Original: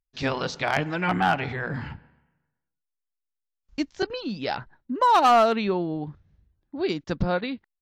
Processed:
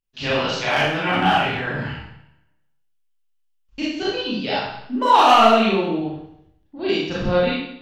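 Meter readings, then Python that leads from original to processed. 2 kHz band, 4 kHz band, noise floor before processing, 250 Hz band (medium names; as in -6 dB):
+6.5 dB, +10.5 dB, -84 dBFS, +5.5 dB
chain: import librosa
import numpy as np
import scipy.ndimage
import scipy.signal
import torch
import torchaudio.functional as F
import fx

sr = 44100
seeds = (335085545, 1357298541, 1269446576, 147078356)

y = fx.peak_eq(x, sr, hz=2900.0, db=8.0, octaves=0.47)
y = fx.rev_schroeder(y, sr, rt60_s=0.74, comb_ms=28, drr_db=-8.5)
y = y * librosa.db_to_amplitude(-4.0)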